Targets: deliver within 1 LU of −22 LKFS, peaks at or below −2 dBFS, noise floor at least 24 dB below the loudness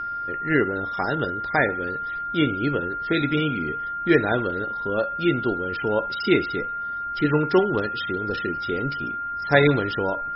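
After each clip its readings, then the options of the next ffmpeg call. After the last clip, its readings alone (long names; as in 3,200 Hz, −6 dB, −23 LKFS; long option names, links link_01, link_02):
interfering tone 1,400 Hz; level of the tone −27 dBFS; integrated loudness −23.5 LKFS; sample peak −3.0 dBFS; target loudness −22.0 LKFS
→ -af "bandreject=frequency=1400:width=30"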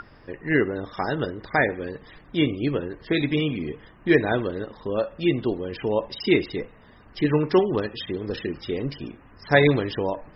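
interfering tone none found; integrated loudness −24.5 LKFS; sample peak −2.5 dBFS; target loudness −22.0 LKFS
→ -af "volume=2.5dB,alimiter=limit=-2dB:level=0:latency=1"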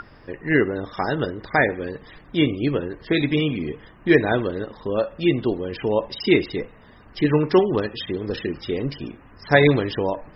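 integrated loudness −22.5 LKFS; sample peak −2.0 dBFS; background noise floor −49 dBFS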